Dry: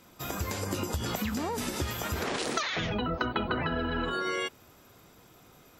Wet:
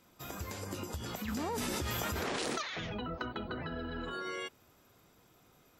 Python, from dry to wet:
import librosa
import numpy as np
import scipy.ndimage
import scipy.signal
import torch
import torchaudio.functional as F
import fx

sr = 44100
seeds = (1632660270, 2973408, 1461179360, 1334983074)

y = fx.graphic_eq_15(x, sr, hz=(1000, 2500, 6300), db=(-5, -6, 9), at=(3.34, 4.07))
y = 10.0 ** (-14.5 / 20.0) * np.tanh(y / 10.0 ** (-14.5 / 20.0))
y = fx.env_flatten(y, sr, amount_pct=100, at=(1.28, 2.62))
y = y * librosa.db_to_amplitude(-8.0)